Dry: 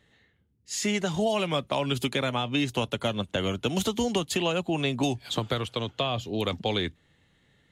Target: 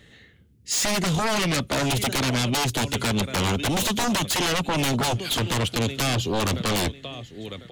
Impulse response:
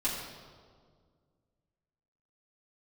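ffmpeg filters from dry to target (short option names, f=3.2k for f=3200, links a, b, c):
-filter_complex "[0:a]equalizer=f=910:w=1.4:g=-7,asplit=2[a][b];[b]aecho=0:1:1048|2096:0.106|0.0244[c];[a][c]amix=inputs=2:normalize=0,aeval=exprs='0.178*sin(PI/2*5.01*val(0)/0.178)':c=same,volume=-5dB"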